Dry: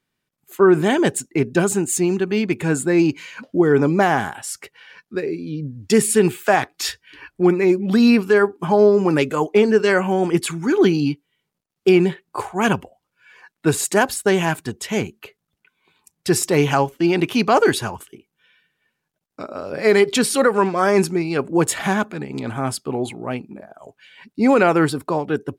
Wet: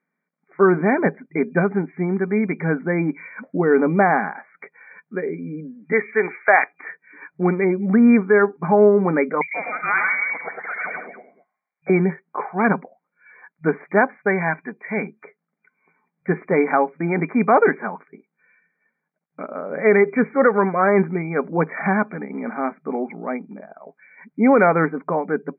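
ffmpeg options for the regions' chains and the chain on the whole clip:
-filter_complex "[0:a]asettb=1/sr,asplit=3[a][b][c];[a]atrim=end=5.924[d];[b]atrim=start=5.92:end=6.73,asetpts=PTS-STARTPTS,afade=t=in:d=0.004:c=qsin,afade=t=out:st=0.806:d=0.004:c=qsin,highpass=470,equalizer=f=2.3k:t=o:w=0.97:g=9[e];[c]atrim=start=6.726[f];[d][e]acrossfade=d=0.004:c1=hsin:c2=qsin[g];[g][f]acrossfade=d=0.004:c1=qsin:c2=hsin,asettb=1/sr,asplit=3[h][i][j];[h]atrim=end=9.414[k];[i]atrim=start=9.41:end=11.9,asetpts=PTS-STARTPTS,afade=t=in:d=0.004:c=qsin,afade=t=out:st=2.486:d=0.004:c=qsin,aecho=1:1:70|100|108|174|209|301:0.178|0.473|0.562|0.282|0.141|0.168,atrim=end_sample=109809,lowpass=f=2.6k:t=q:w=0.5098,lowpass=f=2.6k:t=q:w=0.6013,lowpass=f=2.6k:t=q:w=0.9,lowpass=f=2.6k:t=q:w=2.563,afreqshift=-3000[l];[j]atrim=start=11.896[m];[k][l]acrossfade=d=0.004:c1=hsin:c2=qsin[n];[n][m]acrossfade=d=0.004:c1=qsin:c2=hsin,asettb=1/sr,asplit=3[o][p][q];[o]atrim=end=14.164[r];[p]atrim=start=14.16:end=15.03,asetpts=PTS-STARTPTS,afade=t=in:d=0.004:c=qsin,afade=t=out:st=0.866:d=0.004:c=qsin,tiltshelf=f=1.1k:g=-4,bandreject=f=1.3k:w=10[s];[q]atrim=start=15.026[t];[r][s]acrossfade=d=0.004:c1=hsin:c2=qsin[u];[u][t]acrossfade=d=0.004:c1=qsin:c2=hsin,bandreject=f=980:w=23,afftfilt=real='re*between(b*sr/4096,160,2400)':imag='im*between(b*sr/4096,160,2400)':win_size=4096:overlap=0.75,equalizer=f=340:w=7.2:g=-10.5,volume=1dB"

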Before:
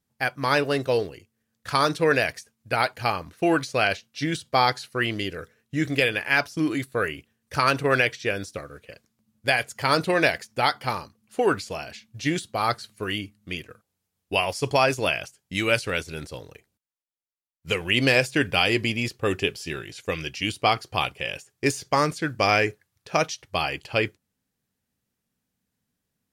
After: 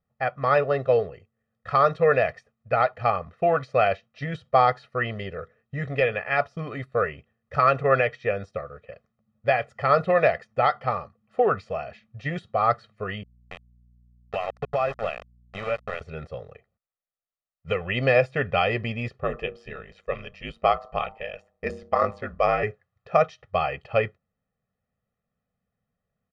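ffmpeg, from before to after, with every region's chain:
-filter_complex "[0:a]asettb=1/sr,asplit=3[a][b][c];[a]atrim=end=13.234[d];[b]atrim=start=13.23:end=16.01,asetpts=PTS-STARTPTS,afade=t=in:d=0.004:c=qsin,afade=t=out:st=2.776:d=0.004:c=qsin,aeval=exprs='val(0)*gte(abs(val(0)),0.0708)':c=same,acompressor=threshold=-25dB:ratio=2.5:attack=3.2:release=140:knee=1:detection=peak,aeval=exprs='val(0)+0.00141*(sin(2*PI*60*n/s)+sin(2*PI*2*60*n/s)/2+sin(2*PI*3*60*n/s)/3+sin(2*PI*4*60*n/s)/4+sin(2*PI*5*60*n/s)/5)':c=same[e];[c]atrim=start=16.006[f];[d][e]acrossfade=d=0.004:c1=hsin:c2=qsin[g];[g][f]acrossfade=d=0.004:c1=qsin:c2=hsin,asettb=1/sr,asplit=3[h][i][j];[h]atrim=end=19.234[k];[i]atrim=start=19.23:end=22.63,asetpts=PTS-STARTPTS,afade=t=in:d=0.004:c=qsin,afade=t=out:st=3.396:d=0.004:c=qsin,bass=f=250:g=-3,treble=f=4k:g=-1,bandreject=f=139.4:t=h:w=4,bandreject=f=278.8:t=h:w=4,bandreject=f=418.2:t=h:w=4,bandreject=f=557.6:t=h:w=4,bandreject=f=697:t=h:w=4,bandreject=f=836.4:t=h:w=4,bandreject=f=975.8:t=h:w=4,bandreject=f=1.1152k:t=h:w=4,bandreject=f=1.2546k:t=h:w=4,aeval=exprs='val(0)*sin(2*PI*53*n/s)':c=same[l];[j]atrim=start=22.626[m];[k][l]acrossfade=d=0.004:c1=hsin:c2=qsin[n];[n][m]acrossfade=d=0.004:c1=qsin:c2=hsin,lowpass=1.5k,equalizer=f=83:t=o:w=2.5:g=-4.5,aecho=1:1:1.6:0.98"

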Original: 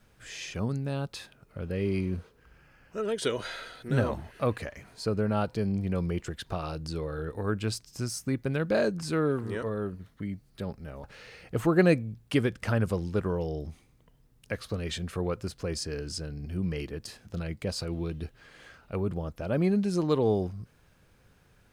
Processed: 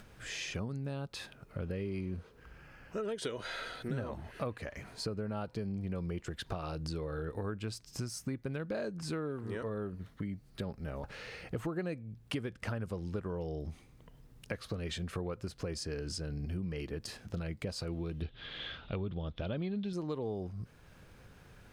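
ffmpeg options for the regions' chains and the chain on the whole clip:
-filter_complex "[0:a]asettb=1/sr,asplit=3[a][b][c];[a]atrim=end=18.224[d];[b]atrim=start=18.22:end=19.93,asetpts=PTS-STARTPTS,afade=t=in:d=0.004:c=qsin,afade=t=out:st=1.706:d=0.004:c=qsin,lowpass=f=3.5k:t=q:w=9.5,lowshelf=f=230:g=5.5[e];[c]atrim=start=19.926[f];[d][e]acrossfade=d=0.004:c1=hsin:c2=qsin[g];[g][f]acrossfade=d=0.004:c1=qsin:c2=hsin,acompressor=threshold=-38dB:ratio=6,highshelf=f=5.7k:g=-4.5,acompressor=mode=upward:threshold=-53dB:ratio=2.5,volume=3dB"

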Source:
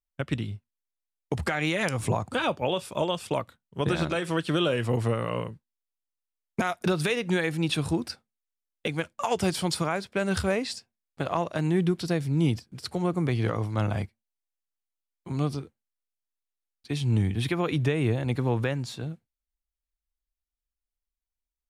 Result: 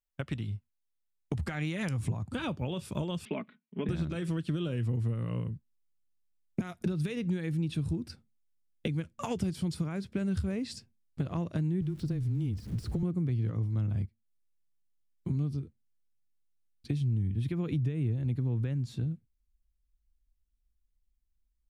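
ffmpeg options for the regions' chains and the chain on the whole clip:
-filter_complex "[0:a]asettb=1/sr,asplit=3[a][b][c];[a]atrim=end=3.254[d];[b]atrim=start=3.25:end=3.89,asetpts=PTS-STARTPTS,afade=t=in:d=0.004:c=qsin,afade=t=out:st=0.636:d=0.004:c=qsin,highpass=f=220:w=0.5412,highpass=f=220:w=1.3066,equalizer=f=480:t=q:w=4:g=-6,equalizer=f=890:t=q:w=4:g=-4,equalizer=f=1.3k:t=q:w=4:g=-4,equalizer=f=2.3k:t=q:w=4:g=6,lowpass=f=3k:w=0.5412,lowpass=f=3k:w=1.3066,aecho=1:1:4.7:0.6,atrim=end_sample=28224[e];[c]atrim=start=3.886[f];[d][e]acrossfade=d=0.004:c1=hsin:c2=qsin[g];[g][f]acrossfade=d=0.004:c1=qsin:c2=hsin,asettb=1/sr,asplit=3[h][i][j];[h]atrim=end=11.814[k];[i]atrim=start=11.81:end=13.03,asetpts=PTS-STARTPTS,afade=t=in:d=0.004:c=qsin,afade=t=out:st=1.216:d=0.004:c=qsin,aeval=exprs='val(0)+0.5*0.0119*sgn(val(0))':c=same,acrossover=split=360|1400[l][m][n];[l]acompressor=threshold=-31dB:ratio=4[o];[m]acompressor=threshold=-35dB:ratio=4[p];[n]acompressor=threshold=-42dB:ratio=4[q];[o][p][q]amix=inputs=3:normalize=0,afreqshift=-16[r];[j]atrim=start=13.026[s];[k][r]acrossfade=d=0.004:c1=hsin:c2=qsin[t];[t][s]acrossfade=d=0.004:c1=qsin:c2=hsin,asubboost=boost=8:cutoff=250,acompressor=threshold=-29dB:ratio=4,volume=-2.5dB"

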